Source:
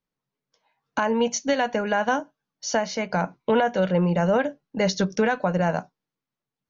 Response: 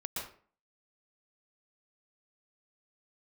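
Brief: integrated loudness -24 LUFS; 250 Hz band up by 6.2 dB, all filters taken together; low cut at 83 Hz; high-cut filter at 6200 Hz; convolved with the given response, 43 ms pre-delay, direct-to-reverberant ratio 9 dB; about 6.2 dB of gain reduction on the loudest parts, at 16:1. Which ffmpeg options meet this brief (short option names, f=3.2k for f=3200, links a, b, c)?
-filter_complex "[0:a]highpass=83,lowpass=6.2k,equalizer=f=250:t=o:g=8.5,acompressor=threshold=-18dB:ratio=16,asplit=2[a][b];[1:a]atrim=start_sample=2205,adelay=43[c];[b][c]afir=irnorm=-1:irlink=0,volume=-11dB[d];[a][d]amix=inputs=2:normalize=0,volume=0.5dB"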